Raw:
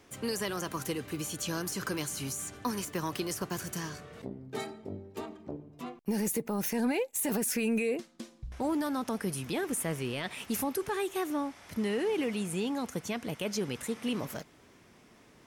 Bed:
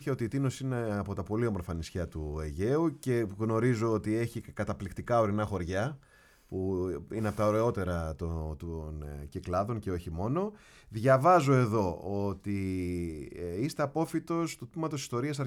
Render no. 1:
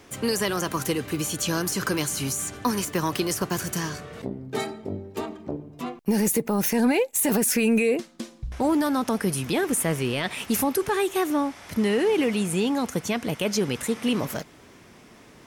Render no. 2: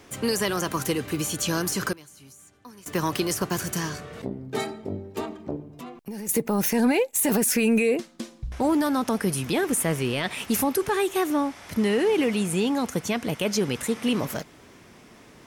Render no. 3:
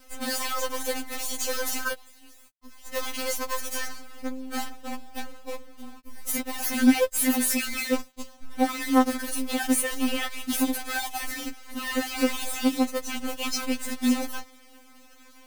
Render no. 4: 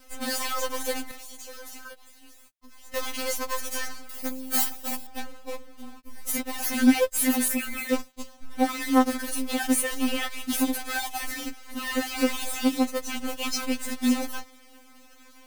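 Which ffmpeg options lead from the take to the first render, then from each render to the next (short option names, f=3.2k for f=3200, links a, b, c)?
-af "volume=8.5dB"
-filter_complex "[0:a]asettb=1/sr,asplit=3[a][b][c];[a]atrim=end=5.624[d];[b]atrim=start=5.62:end=6.29,asetpts=PTS-STARTPTS,afade=t=in:d=0.004:c=qsin,afade=t=out:st=0.666:d=0.004:c=qsin,acompressor=threshold=-38dB:ratio=2.5:attack=3.2:release=140:knee=1:detection=peak[e];[c]atrim=start=6.286[f];[d][e]acrossfade=d=0.004:c1=hsin:c2=qsin[g];[g][f]acrossfade=d=0.004:c1=qsin:c2=hsin,asplit=3[h][i][j];[h]atrim=end=1.93,asetpts=PTS-STARTPTS,afade=t=out:st=1.73:d=0.2:c=log:silence=0.0841395[k];[i]atrim=start=1.93:end=2.86,asetpts=PTS-STARTPTS,volume=-21.5dB[l];[j]atrim=start=2.86,asetpts=PTS-STARTPTS,afade=t=in:d=0.2:c=log:silence=0.0841395[m];[k][l][m]concat=n=3:v=0:a=1"
-af "acrusher=bits=5:dc=4:mix=0:aa=0.000001,afftfilt=real='re*3.46*eq(mod(b,12),0)':imag='im*3.46*eq(mod(b,12),0)':win_size=2048:overlap=0.75"
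-filter_complex "[0:a]asettb=1/sr,asplit=3[a][b][c];[a]atrim=end=1.114[d];[b]atrim=start=1.11:end=2.94,asetpts=PTS-STARTPTS,afade=t=in:d=0.004:c=qsin,afade=t=out:st=1.826:d=0.004:c=qsin,acompressor=threshold=-43dB:ratio=3:attack=3.2:release=140:knee=1:detection=peak[e];[c]atrim=start=2.936[f];[d][e]acrossfade=d=0.004:c1=hsin:c2=qsin[g];[g][f]acrossfade=d=0.004:c1=qsin:c2=hsin,asettb=1/sr,asplit=3[h][i][j];[h]atrim=end=4.094[k];[i]atrim=start=4.09:end=5.07,asetpts=PTS-STARTPTS,afade=t=in:d=0.004:c=qsin,afade=t=out:st=0.976:d=0.004:c=qsin,aemphasis=mode=production:type=75fm[l];[j]atrim=start=5.066[m];[k][l]acrossfade=d=0.004:c1=hsin:c2=qsin[n];[n][m]acrossfade=d=0.004:c1=qsin:c2=hsin,asettb=1/sr,asplit=3[o][p][q];[o]atrim=end=7.484[r];[p]atrim=start=7.48:end=7.89,asetpts=PTS-STARTPTS,afade=t=in:d=0.004:c=qsin,afade=t=out:st=0.406:d=0.004:c=qsin,equalizer=f=5k:w=1.1:g=-12[s];[q]atrim=start=7.886[t];[r][s]acrossfade=d=0.004:c1=hsin:c2=qsin[u];[u][t]acrossfade=d=0.004:c1=qsin:c2=hsin"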